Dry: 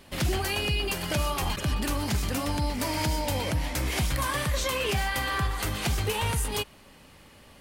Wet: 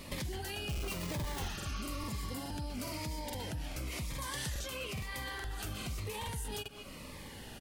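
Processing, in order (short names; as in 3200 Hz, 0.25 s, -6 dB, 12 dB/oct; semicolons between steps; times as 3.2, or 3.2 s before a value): 0.69–1.48 half-waves squared off; speakerphone echo 0.2 s, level -17 dB; limiter -22 dBFS, peak gain reduction 4 dB; compressor 5:1, threshold -44 dBFS, peak gain reduction 17.5 dB; 1.43–2.38 spectral repair 1100–6700 Hz both; 4.1–4.54 bell 6000 Hz 0 dB -> +12 dB 1.7 oct; crackling interface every 0.42 s, samples 2048, repeat, from 0.73; cascading phaser falling 1 Hz; gain +6 dB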